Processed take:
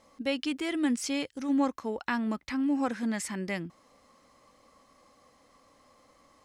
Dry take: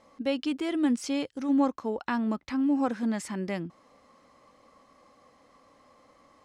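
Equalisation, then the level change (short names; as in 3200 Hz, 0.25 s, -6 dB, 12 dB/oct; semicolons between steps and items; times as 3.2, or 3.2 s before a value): low shelf 73 Hz +7 dB; dynamic EQ 2000 Hz, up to +6 dB, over -50 dBFS, Q 1.6; high shelf 4400 Hz +9.5 dB; -3.0 dB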